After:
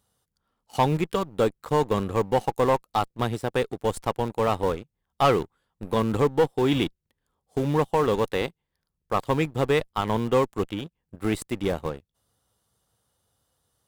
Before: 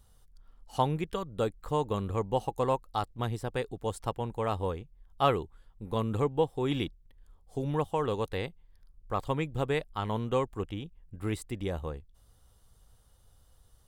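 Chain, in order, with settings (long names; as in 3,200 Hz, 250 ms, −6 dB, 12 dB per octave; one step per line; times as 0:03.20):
high-pass filter 140 Hz 12 dB per octave
leveller curve on the samples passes 2
in parallel at −9.5 dB: comparator with hysteresis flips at −24.5 dBFS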